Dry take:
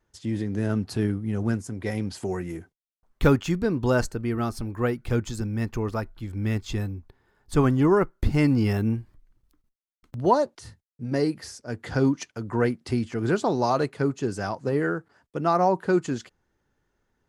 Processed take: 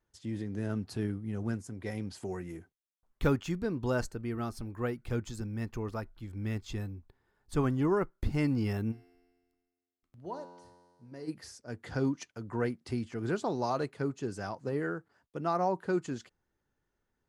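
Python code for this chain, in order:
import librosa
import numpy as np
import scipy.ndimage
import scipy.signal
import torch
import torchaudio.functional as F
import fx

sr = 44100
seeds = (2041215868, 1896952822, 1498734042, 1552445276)

y = fx.comb_fb(x, sr, f0_hz=88.0, decay_s=1.6, harmonics='all', damping=0.0, mix_pct=80, at=(8.91, 11.27), fade=0.02)
y = y * 10.0 ** (-8.5 / 20.0)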